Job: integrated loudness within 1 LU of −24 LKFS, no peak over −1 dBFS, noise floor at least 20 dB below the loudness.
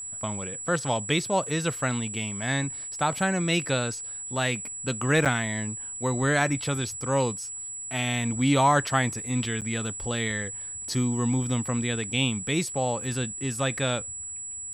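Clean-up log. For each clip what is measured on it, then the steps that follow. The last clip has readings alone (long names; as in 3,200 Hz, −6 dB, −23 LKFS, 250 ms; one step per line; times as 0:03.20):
number of dropouts 2; longest dropout 7.6 ms; interfering tone 7,800 Hz; level of the tone −34 dBFS; integrated loudness −27.0 LKFS; sample peak −9.5 dBFS; target loudness −24.0 LKFS
→ repair the gap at 0:05.25/0:09.61, 7.6 ms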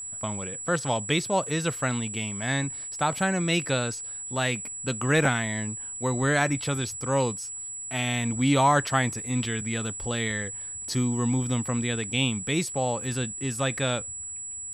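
number of dropouts 0; interfering tone 7,800 Hz; level of the tone −34 dBFS
→ notch filter 7,800 Hz, Q 30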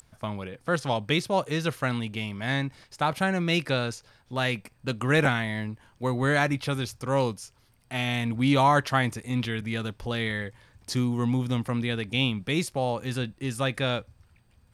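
interfering tone none found; integrated loudness −27.5 LKFS; sample peak −9.5 dBFS; target loudness −24.0 LKFS
→ level +3.5 dB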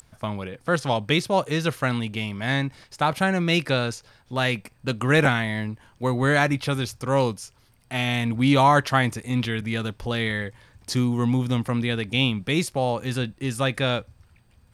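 integrated loudness −24.0 LKFS; sample peak −6.0 dBFS; background noise floor −58 dBFS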